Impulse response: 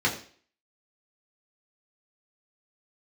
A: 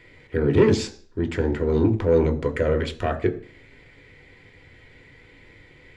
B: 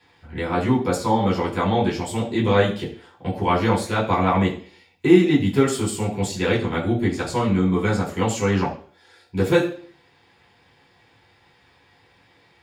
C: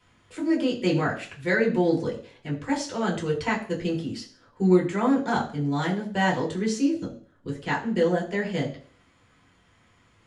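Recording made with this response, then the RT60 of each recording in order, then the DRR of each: C; 0.45, 0.45, 0.45 seconds; 5.5, −8.5, −4.0 decibels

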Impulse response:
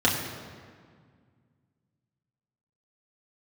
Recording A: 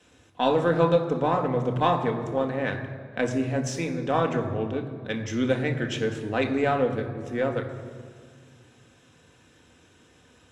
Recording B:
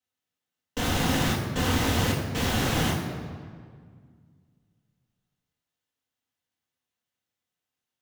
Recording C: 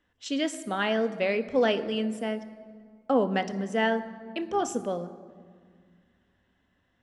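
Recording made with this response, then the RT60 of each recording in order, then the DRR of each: B; 1.9, 1.9, 1.9 seconds; 3.0, −5.0, 9.5 decibels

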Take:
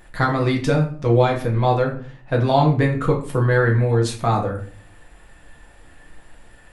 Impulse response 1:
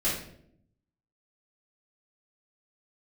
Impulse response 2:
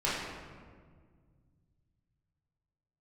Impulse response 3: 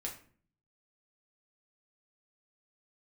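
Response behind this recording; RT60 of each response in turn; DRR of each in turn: 3; 0.70, 1.8, 0.50 seconds; −10.0, −9.0, −1.5 decibels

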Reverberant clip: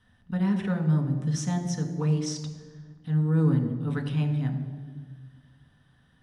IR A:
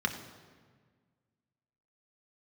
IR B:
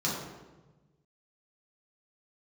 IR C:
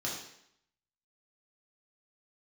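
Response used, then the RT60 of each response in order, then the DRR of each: A; 1.6, 1.2, 0.70 seconds; 3.5, −6.5, −4.5 decibels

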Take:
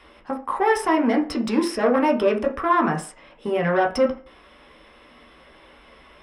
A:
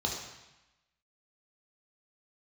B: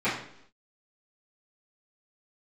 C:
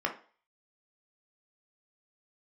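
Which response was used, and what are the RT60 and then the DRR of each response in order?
C; 0.95, 0.70, 0.40 seconds; −1.5, −15.5, 1.0 decibels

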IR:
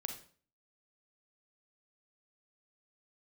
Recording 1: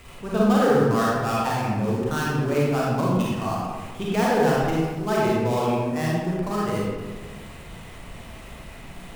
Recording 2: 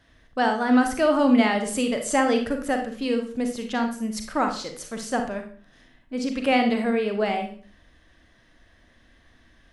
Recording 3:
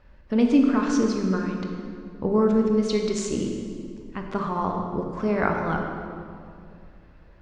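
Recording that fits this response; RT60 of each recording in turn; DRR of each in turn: 2; 1.5, 0.45, 2.3 seconds; −6.0, 4.5, 1.5 decibels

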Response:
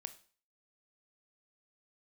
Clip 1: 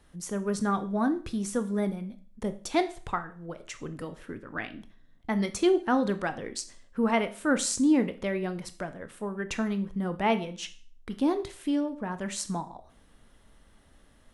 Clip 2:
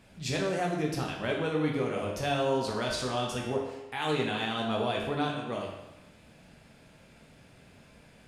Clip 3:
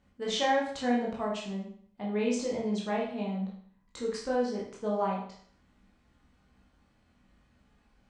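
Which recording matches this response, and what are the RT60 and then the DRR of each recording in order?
1; 0.40, 1.0, 0.55 seconds; 10.0, −1.5, −4.0 decibels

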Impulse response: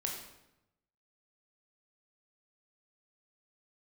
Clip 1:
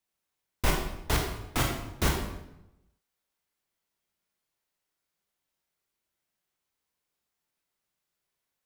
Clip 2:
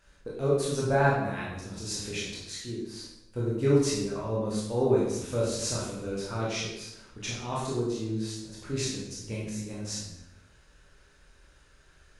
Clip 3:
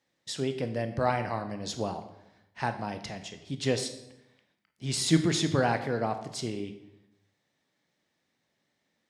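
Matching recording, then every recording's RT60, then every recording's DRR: 1; 0.90, 0.90, 0.90 seconds; 0.0, −6.0, 7.5 decibels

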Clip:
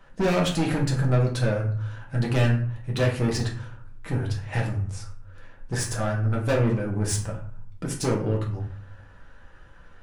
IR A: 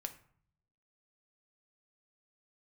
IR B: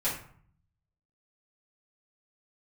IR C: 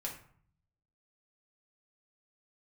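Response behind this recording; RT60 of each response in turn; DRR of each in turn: C; 0.55, 0.55, 0.55 seconds; 6.5, −11.0, −2.0 decibels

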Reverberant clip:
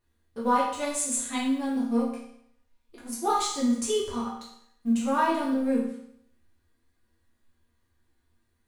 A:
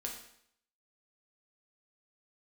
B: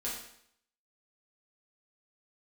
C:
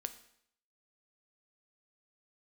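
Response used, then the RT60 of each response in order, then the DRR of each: B; 0.70, 0.70, 0.70 seconds; −0.5, −7.0, 9.5 decibels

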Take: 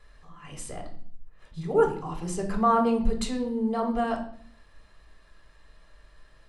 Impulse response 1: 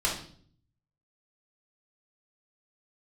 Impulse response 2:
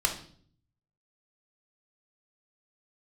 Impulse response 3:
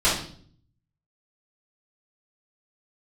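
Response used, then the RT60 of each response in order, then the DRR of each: 2; 0.55, 0.55, 0.55 seconds; −4.5, 2.0, −11.0 decibels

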